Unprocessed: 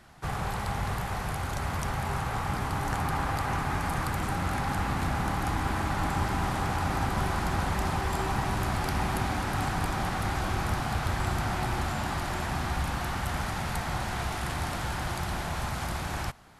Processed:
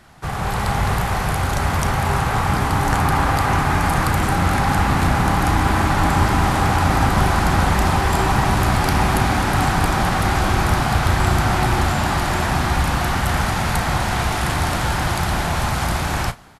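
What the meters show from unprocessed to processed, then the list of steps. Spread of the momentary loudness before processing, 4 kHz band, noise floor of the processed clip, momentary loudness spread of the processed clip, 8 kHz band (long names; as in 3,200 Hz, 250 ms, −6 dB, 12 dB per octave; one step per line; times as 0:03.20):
3 LU, +11.5 dB, −23 dBFS, 4 LU, +11.5 dB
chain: automatic gain control gain up to 5.5 dB
double-tracking delay 35 ms −13 dB
level +6 dB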